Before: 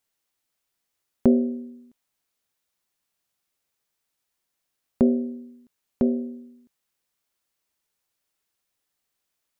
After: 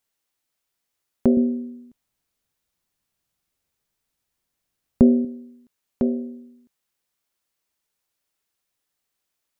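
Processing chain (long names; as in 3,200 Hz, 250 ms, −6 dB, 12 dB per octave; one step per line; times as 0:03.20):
0:01.37–0:05.25: low-shelf EQ 220 Hz +11.5 dB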